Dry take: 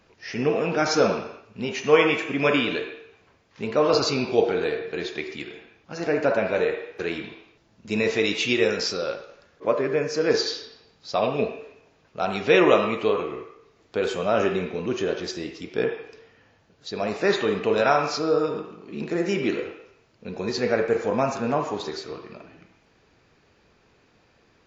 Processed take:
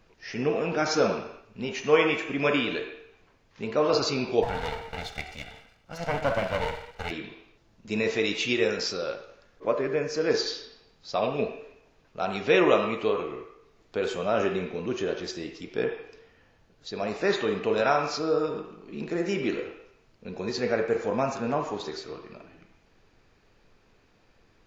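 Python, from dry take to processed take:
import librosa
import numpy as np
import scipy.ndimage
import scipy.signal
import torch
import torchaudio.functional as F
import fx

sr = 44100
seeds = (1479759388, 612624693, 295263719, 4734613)

y = fx.lower_of_two(x, sr, delay_ms=1.4, at=(4.42, 7.1), fade=0.02)
y = fx.dmg_noise_colour(y, sr, seeds[0], colour='brown', level_db=-61.0)
y = F.gain(torch.from_numpy(y), -3.5).numpy()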